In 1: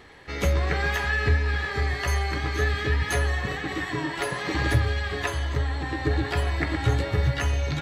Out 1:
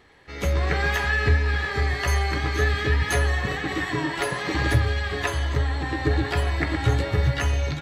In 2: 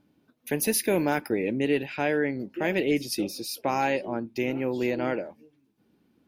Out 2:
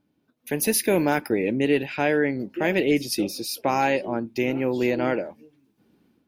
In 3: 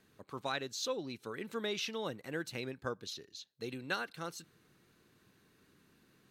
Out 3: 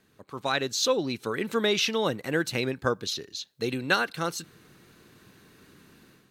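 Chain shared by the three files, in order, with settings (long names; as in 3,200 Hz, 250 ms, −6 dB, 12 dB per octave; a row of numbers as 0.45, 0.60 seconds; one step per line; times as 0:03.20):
automatic gain control gain up to 9.5 dB
normalise the peak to −9 dBFS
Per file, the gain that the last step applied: −6.5, −5.0, +3.0 decibels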